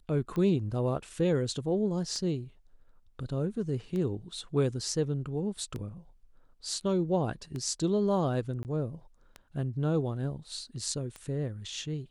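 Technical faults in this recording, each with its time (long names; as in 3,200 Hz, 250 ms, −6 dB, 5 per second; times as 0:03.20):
scratch tick 33 1/3 rpm −25 dBFS
0:08.63–0:08.65: drop-out 19 ms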